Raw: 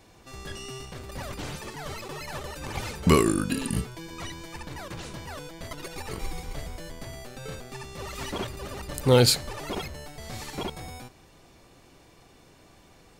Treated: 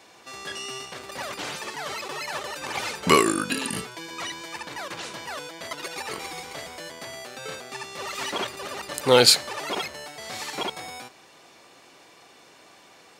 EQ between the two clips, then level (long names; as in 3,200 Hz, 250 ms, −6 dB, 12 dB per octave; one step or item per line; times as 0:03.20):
meter weighting curve A
+6.0 dB